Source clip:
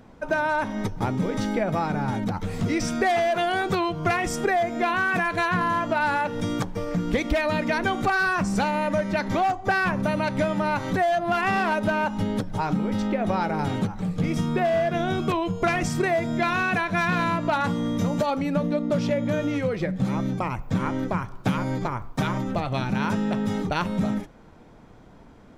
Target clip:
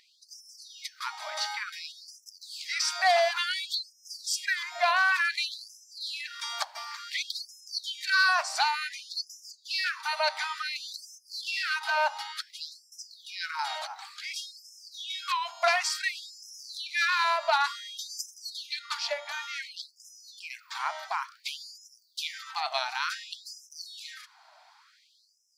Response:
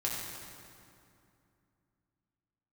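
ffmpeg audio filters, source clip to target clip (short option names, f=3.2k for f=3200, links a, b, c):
-filter_complex "[0:a]highpass=440,equalizer=f=4.5k:w=2.9:g=13.5,asplit=3[a][b][c];[a]afade=t=out:st=18.09:d=0.02[d];[b]acontrast=76,afade=t=in:st=18.09:d=0.02,afade=t=out:st=18.93:d=0.02[e];[c]afade=t=in:st=18.93:d=0.02[f];[d][e][f]amix=inputs=3:normalize=0,afftfilt=real='re*gte(b*sr/1024,580*pow(5100/580,0.5+0.5*sin(2*PI*0.56*pts/sr)))':imag='im*gte(b*sr/1024,580*pow(5100/580,0.5+0.5*sin(2*PI*0.56*pts/sr)))':win_size=1024:overlap=0.75"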